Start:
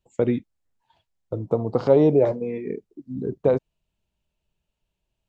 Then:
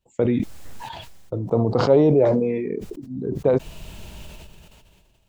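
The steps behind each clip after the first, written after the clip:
level that may fall only so fast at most 27 dB per second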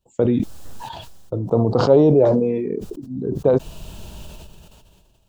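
parametric band 2,100 Hz −10.5 dB 0.54 octaves
level +2.5 dB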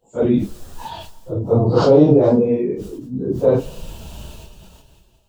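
random phases in long frames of 100 ms
convolution reverb RT60 1.2 s, pre-delay 8 ms, DRR 17 dB
level +2 dB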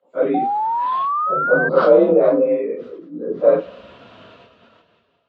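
frequency shifter +43 Hz
loudspeaker in its box 370–3,200 Hz, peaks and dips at 370 Hz −3 dB, 550 Hz +3 dB, 850 Hz −9 dB, 1,300 Hz +8 dB, 2,100 Hz +5 dB, 2,900 Hz −5 dB
sound drawn into the spectrogram rise, 0:00.34–0:01.69, 740–1,600 Hz −21 dBFS
level +1 dB

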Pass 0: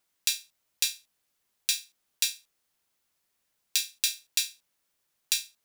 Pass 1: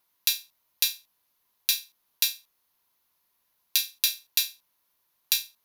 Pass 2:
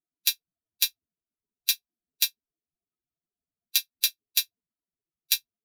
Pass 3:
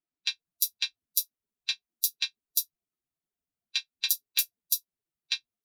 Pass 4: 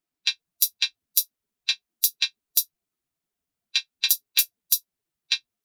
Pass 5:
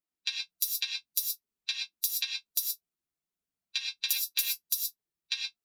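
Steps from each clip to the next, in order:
thirty-one-band graphic EQ 1,000 Hz +10 dB, 4,000 Hz +3 dB, 8,000 Hz −9 dB, 12,500 Hz +11 dB; level +1 dB
spectral dynamics exaggerated over time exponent 3; level +3 dB
multiband delay without the direct sound lows, highs 350 ms, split 4,900 Hz
hard clipping −9 dBFS, distortion −19 dB; level +6 dB
reverb whose tail is shaped and stops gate 140 ms rising, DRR 2 dB; level −9 dB

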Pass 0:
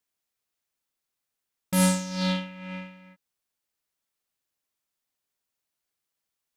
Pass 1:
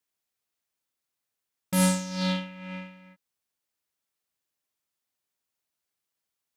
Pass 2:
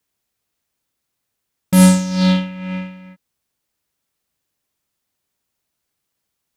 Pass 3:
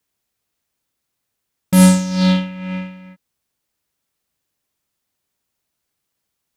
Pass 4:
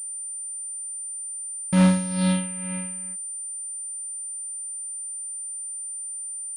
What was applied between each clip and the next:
high-pass filter 41 Hz; level −1 dB
low-shelf EQ 300 Hz +8.5 dB; level +8 dB
no processing that can be heard
switching amplifier with a slow clock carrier 9,100 Hz; level −7.5 dB

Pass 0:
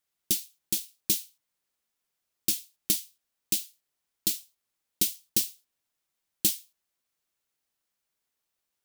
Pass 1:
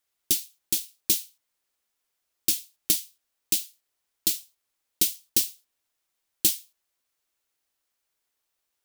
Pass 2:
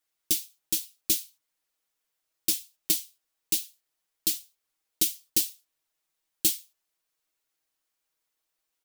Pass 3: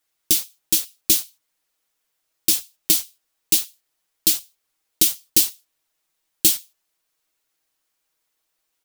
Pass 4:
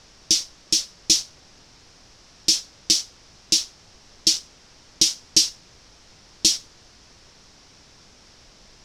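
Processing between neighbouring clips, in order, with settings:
parametric band 160 Hz −8.5 dB 1 octave; level +3 dB
comb filter 6.3 ms; level −3.5 dB
in parallel at −4.5 dB: bit-depth reduction 6 bits, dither none; on the sum: boost into a limiter +7.5 dB; level −1 dB
background noise pink −50 dBFS; low-pass with resonance 5,500 Hz, resonance Q 4.1; level −3 dB

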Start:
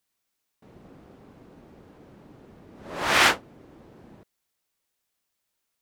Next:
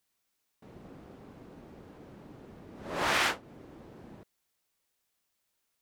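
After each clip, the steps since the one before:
downward compressor 4 to 1, threshold −26 dBFS, peak gain reduction 10.5 dB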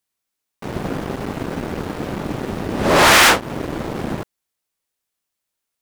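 parametric band 9,800 Hz +2 dB
leveller curve on the samples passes 5
level +8 dB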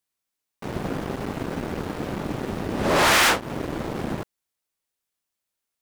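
downward compressor 1.5 to 1, threshold −19 dBFS, peak gain reduction 3.5 dB
level −3.5 dB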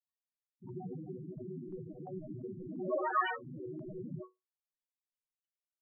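resonators tuned to a chord B2 major, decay 0.2 s
spectral peaks only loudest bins 4
auto-filter low-pass saw up 2.9 Hz 1,000–4,000 Hz
level +2.5 dB

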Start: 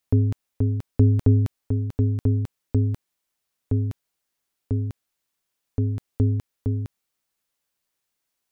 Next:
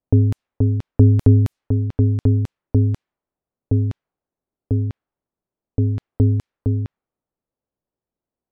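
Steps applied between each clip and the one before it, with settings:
low-pass that shuts in the quiet parts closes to 570 Hz, open at −18 dBFS
level +5 dB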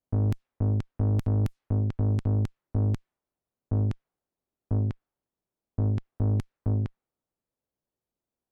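dynamic equaliser 540 Hz, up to −6 dB, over −35 dBFS, Q 1
brickwall limiter −12.5 dBFS, peak gain reduction 10 dB
tube saturation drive 22 dB, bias 0.7
level +1 dB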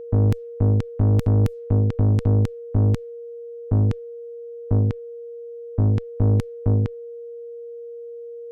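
steady tone 470 Hz −40 dBFS
level +7 dB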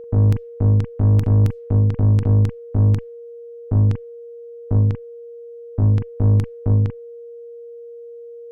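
convolution reverb, pre-delay 39 ms, DRR 7.5 dB

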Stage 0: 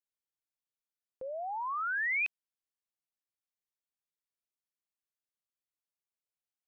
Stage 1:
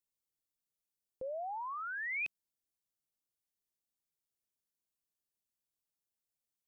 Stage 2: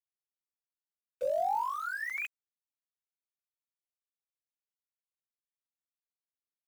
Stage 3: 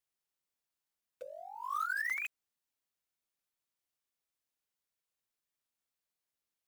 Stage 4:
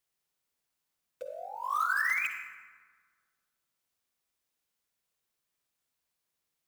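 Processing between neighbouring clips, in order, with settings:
parametric band 1,600 Hz −12 dB 2.6 octaves; level +4.5 dB
three sine waves on the formant tracks; centre clipping without the shift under −51.5 dBFS; level +6.5 dB
compressor whose output falls as the input rises −38 dBFS, ratio −0.5
convolution reverb RT60 1.6 s, pre-delay 48 ms, DRR 5.5 dB; level +5 dB

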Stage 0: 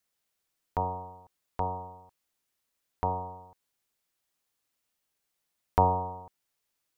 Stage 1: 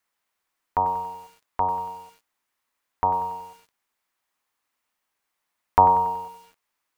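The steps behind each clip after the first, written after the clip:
octave-band graphic EQ 125/250/1,000/2,000 Hz −4/+3/+10/+6 dB
feedback echo at a low word length 94 ms, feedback 55%, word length 7 bits, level −13 dB
level −1 dB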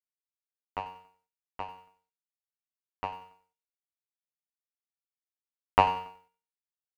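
power curve on the samples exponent 2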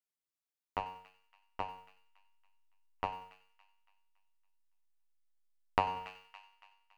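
delay with a high-pass on its return 281 ms, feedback 43%, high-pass 1,900 Hz, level −15 dB
in parallel at −12 dB: slack as between gear wheels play −25.5 dBFS
on the sum: downward compressor 2.5 to 1, threshold −29 dBFS, peak gain reduction 11.5 dB
level −1 dB

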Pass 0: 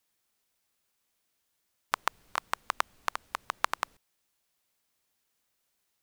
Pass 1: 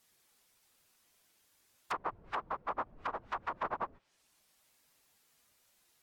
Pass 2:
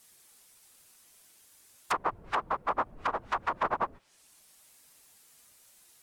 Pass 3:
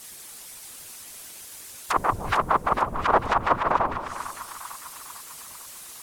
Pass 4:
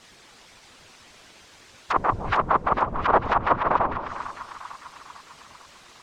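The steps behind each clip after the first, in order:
random phases in long frames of 50 ms; treble cut that deepens with the level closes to 660 Hz, closed at −32.5 dBFS; brickwall limiter −33.5 dBFS, peak gain reduction 9 dB; level +8 dB
parametric band 9,500 Hz +7.5 dB 1.2 octaves; level +7 dB
compressor whose output falls as the input rises −32 dBFS, ratio −0.5; echo with a time of its own for lows and highs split 1,000 Hz, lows 159 ms, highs 449 ms, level −9 dB; harmonic and percussive parts rebalanced percussive +6 dB; level +8.5 dB
high-frequency loss of the air 160 metres; level +1.5 dB

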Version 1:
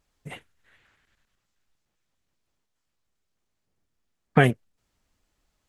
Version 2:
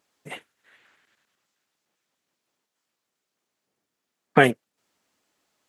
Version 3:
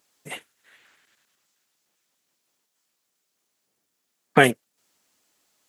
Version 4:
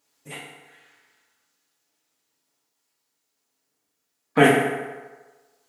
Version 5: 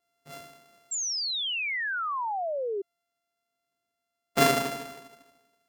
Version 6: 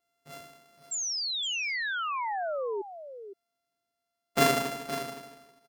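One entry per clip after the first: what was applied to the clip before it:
high-pass filter 250 Hz 12 dB per octave; level +4 dB
high-shelf EQ 4,300 Hz +10 dB
convolution reverb RT60 1.3 s, pre-delay 4 ms, DRR −5 dB; level −6 dB
samples sorted by size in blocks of 64 samples; sound drawn into the spectrogram fall, 0:00.91–0:02.82, 380–7,600 Hz −24 dBFS; level −6.5 dB
single-tap delay 515 ms −11.5 dB; level −1.5 dB

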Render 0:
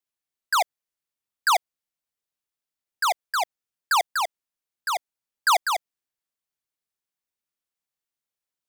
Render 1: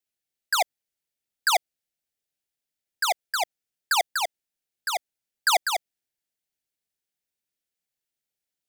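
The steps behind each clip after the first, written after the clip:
parametric band 1,100 Hz −15 dB 0.41 octaves
level +2 dB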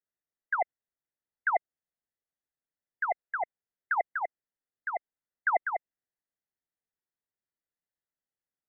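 linear-phase brick-wall low-pass 2,100 Hz
level −4 dB

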